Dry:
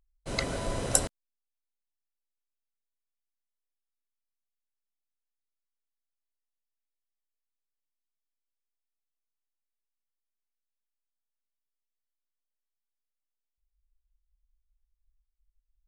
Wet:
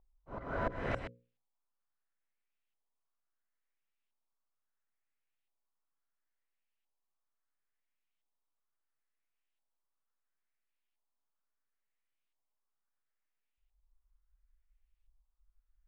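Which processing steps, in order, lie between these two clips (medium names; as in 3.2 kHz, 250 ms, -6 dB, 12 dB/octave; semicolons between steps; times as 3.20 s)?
LFO low-pass saw up 0.73 Hz 840–3000 Hz; slow attack 328 ms; hum notches 60/120/180/240/300/360/420/480/540 Hz; trim +2 dB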